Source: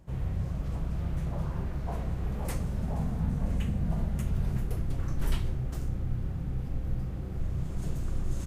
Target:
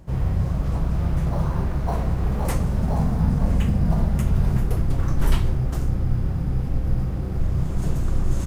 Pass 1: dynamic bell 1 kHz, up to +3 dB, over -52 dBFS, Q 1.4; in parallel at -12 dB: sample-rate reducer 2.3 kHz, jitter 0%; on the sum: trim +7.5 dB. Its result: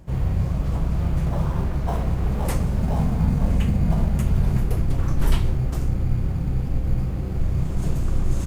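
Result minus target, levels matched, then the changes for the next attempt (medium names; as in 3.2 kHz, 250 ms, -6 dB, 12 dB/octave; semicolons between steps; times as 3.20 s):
sample-rate reducer: distortion +5 dB
change: sample-rate reducer 5 kHz, jitter 0%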